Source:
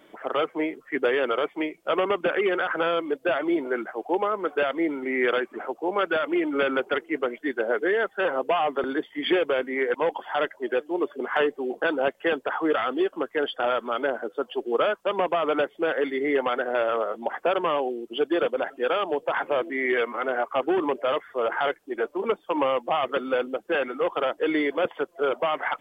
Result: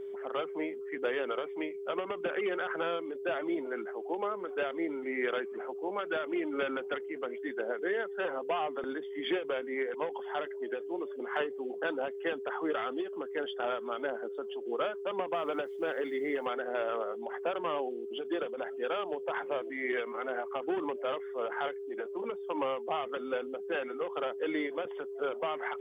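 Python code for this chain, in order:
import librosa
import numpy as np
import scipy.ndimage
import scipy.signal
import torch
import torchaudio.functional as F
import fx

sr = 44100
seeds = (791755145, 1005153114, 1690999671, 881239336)

y = fx.quant_dither(x, sr, seeds[0], bits=10, dither='none', at=(15.34, 16.47))
y = y + 10.0 ** (-29.0 / 20.0) * np.sin(2.0 * np.pi * 400.0 * np.arange(len(y)) / sr)
y = fx.end_taper(y, sr, db_per_s=130.0)
y = y * librosa.db_to_amplitude(-9.0)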